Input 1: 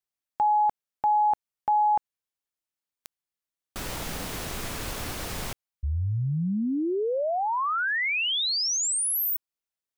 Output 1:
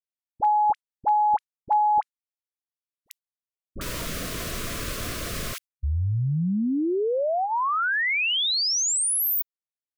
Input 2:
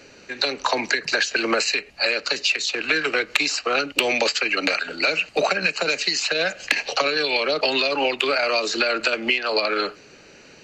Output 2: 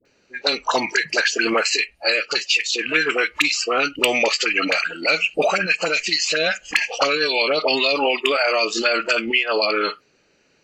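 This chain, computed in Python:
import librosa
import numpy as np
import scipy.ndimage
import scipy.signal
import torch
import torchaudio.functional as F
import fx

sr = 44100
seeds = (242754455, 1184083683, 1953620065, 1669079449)

y = fx.dispersion(x, sr, late='highs', ms=54.0, hz=820.0)
y = fx.noise_reduce_blind(y, sr, reduce_db=16)
y = F.gain(torch.from_numpy(y), 2.5).numpy()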